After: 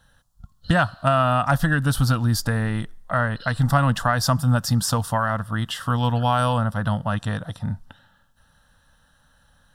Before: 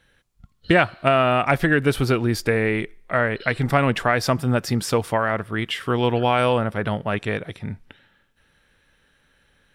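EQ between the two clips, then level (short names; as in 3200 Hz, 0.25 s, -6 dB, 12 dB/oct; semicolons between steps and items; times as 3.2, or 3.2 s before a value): dynamic EQ 650 Hz, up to -7 dB, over -32 dBFS, Q 0.77; fixed phaser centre 940 Hz, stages 4; +6.0 dB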